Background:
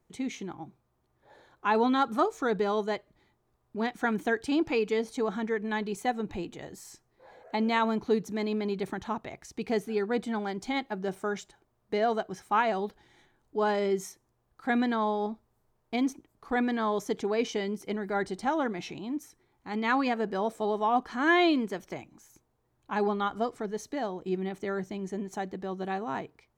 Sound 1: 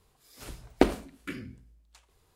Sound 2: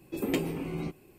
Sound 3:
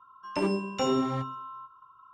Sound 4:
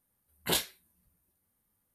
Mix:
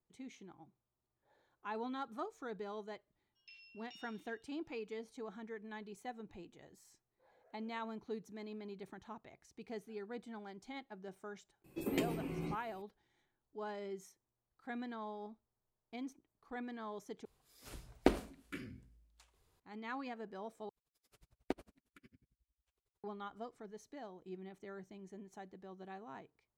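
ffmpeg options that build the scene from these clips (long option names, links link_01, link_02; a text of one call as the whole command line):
ffmpeg -i bed.wav -i cue0.wav -i cue1.wav -i cue2.wav -filter_complex "[1:a]asplit=2[link_01][link_02];[0:a]volume=-17dB[link_03];[3:a]asuperpass=centerf=3700:order=8:qfactor=1.1[link_04];[link_02]aeval=exprs='val(0)*pow(10,-40*(0.5-0.5*cos(2*PI*11*n/s))/20)':channel_layout=same[link_05];[link_03]asplit=3[link_06][link_07][link_08];[link_06]atrim=end=17.254[link_09];[link_01]atrim=end=2.35,asetpts=PTS-STARTPTS,volume=-8dB[link_10];[link_07]atrim=start=19.596:end=20.694[link_11];[link_05]atrim=end=2.35,asetpts=PTS-STARTPTS,volume=-17dB[link_12];[link_08]atrim=start=23.036[link_13];[link_04]atrim=end=2.13,asetpts=PTS-STARTPTS,volume=-17.5dB,afade=type=in:duration=0.004:curve=hsin,afade=type=out:start_time=2.126:duration=0.004:curve=hsin,adelay=3120[link_14];[2:a]atrim=end=1.18,asetpts=PTS-STARTPTS,volume=-6.5dB,afade=type=in:duration=0.004:curve=hsin,afade=type=out:start_time=1.176:duration=0.004:curve=hsin,adelay=11640[link_15];[link_09][link_10]acrossfade=duration=0.004:curve1=hsin:curve2=hsin[link_16];[link_16][link_11]acrossfade=duration=0.004:curve1=hsin:curve2=hsin[link_17];[link_17][link_12]acrossfade=duration=0.004:curve1=hsin:curve2=hsin[link_18];[link_18][link_13]acrossfade=duration=0.004:curve1=hsin:curve2=hsin[link_19];[link_19][link_14][link_15]amix=inputs=3:normalize=0" out.wav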